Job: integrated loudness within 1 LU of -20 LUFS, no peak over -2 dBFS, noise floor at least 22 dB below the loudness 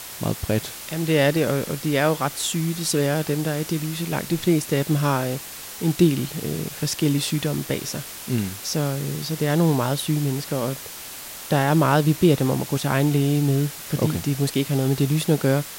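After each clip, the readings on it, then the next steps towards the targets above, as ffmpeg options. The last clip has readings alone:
noise floor -37 dBFS; noise floor target -45 dBFS; loudness -22.5 LUFS; peak -5.0 dBFS; loudness target -20.0 LUFS
-> -af "afftdn=nr=8:nf=-37"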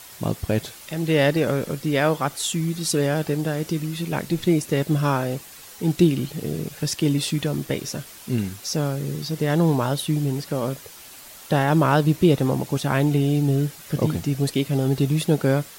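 noise floor -43 dBFS; noise floor target -45 dBFS
-> -af "afftdn=nr=6:nf=-43"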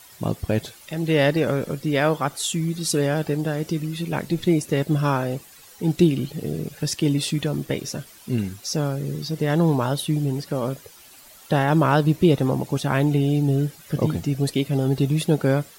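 noise floor -48 dBFS; loudness -23.0 LUFS; peak -5.5 dBFS; loudness target -20.0 LUFS
-> -af "volume=3dB"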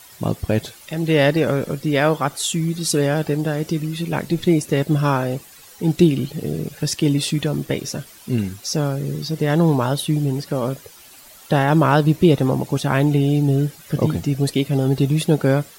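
loudness -20.0 LUFS; peak -2.5 dBFS; noise floor -45 dBFS

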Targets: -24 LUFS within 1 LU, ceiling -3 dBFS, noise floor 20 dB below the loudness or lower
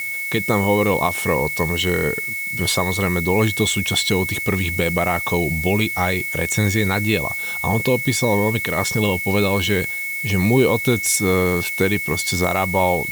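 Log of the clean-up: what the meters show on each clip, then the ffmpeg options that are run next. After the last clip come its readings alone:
steady tone 2200 Hz; tone level -24 dBFS; noise floor -26 dBFS; noise floor target -39 dBFS; loudness -19.0 LUFS; peak -4.5 dBFS; loudness target -24.0 LUFS
-> -af "bandreject=f=2.2k:w=30"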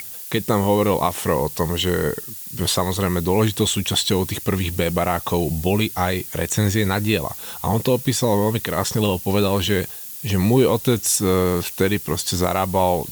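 steady tone none; noise floor -35 dBFS; noise floor target -41 dBFS
-> -af "afftdn=nr=6:nf=-35"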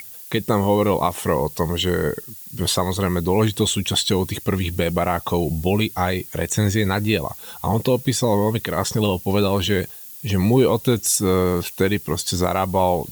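noise floor -39 dBFS; noise floor target -41 dBFS
-> -af "afftdn=nr=6:nf=-39"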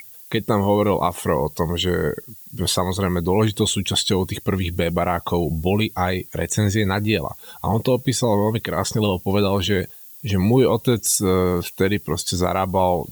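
noise floor -42 dBFS; loudness -21.0 LUFS; peak -6.0 dBFS; loudness target -24.0 LUFS
-> -af "volume=-3dB"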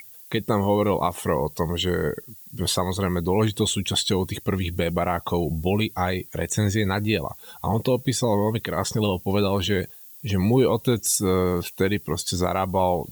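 loudness -24.0 LUFS; peak -9.0 dBFS; noise floor -45 dBFS

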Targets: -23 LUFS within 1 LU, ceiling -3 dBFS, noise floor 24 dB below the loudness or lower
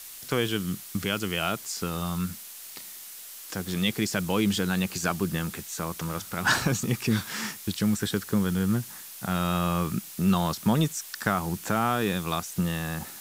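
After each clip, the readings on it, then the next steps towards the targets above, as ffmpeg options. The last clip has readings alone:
noise floor -43 dBFS; noise floor target -52 dBFS; loudness -28.0 LUFS; peak -8.5 dBFS; loudness target -23.0 LUFS
-> -af "afftdn=nr=9:nf=-43"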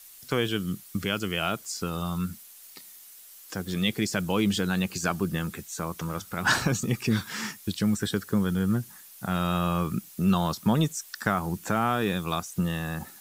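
noise floor -49 dBFS; noise floor target -52 dBFS
-> -af "afftdn=nr=6:nf=-49"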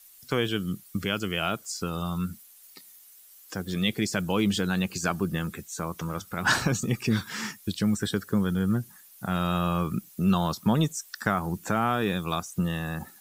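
noise floor -53 dBFS; loudness -28.0 LUFS; peak -9.0 dBFS; loudness target -23.0 LUFS
-> -af "volume=5dB"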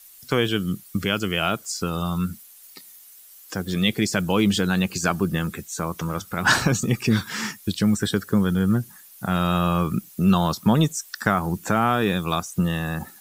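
loudness -23.0 LUFS; peak -4.0 dBFS; noise floor -48 dBFS

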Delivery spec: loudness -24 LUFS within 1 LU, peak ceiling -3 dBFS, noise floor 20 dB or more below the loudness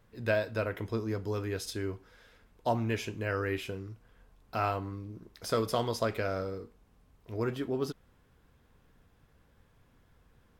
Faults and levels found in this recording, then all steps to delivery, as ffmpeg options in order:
loudness -34.0 LUFS; peak -15.0 dBFS; loudness target -24.0 LUFS
-> -af "volume=10dB"

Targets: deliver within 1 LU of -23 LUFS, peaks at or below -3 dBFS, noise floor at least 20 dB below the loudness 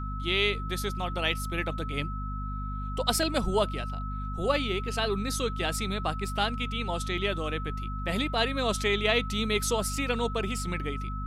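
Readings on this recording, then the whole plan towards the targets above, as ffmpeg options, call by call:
hum 50 Hz; harmonics up to 250 Hz; hum level -32 dBFS; steady tone 1300 Hz; tone level -38 dBFS; loudness -29.5 LUFS; peak -8.0 dBFS; loudness target -23.0 LUFS
-> -af "bandreject=f=50:t=h:w=6,bandreject=f=100:t=h:w=6,bandreject=f=150:t=h:w=6,bandreject=f=200:t=h:w=6,bandreject=f=250:t=h:w=6"
-af "bandreject=f=1.3k:w=30"
-af "volume=6.5dB,alimiter=limit=-3dB:level=0:latency=1"

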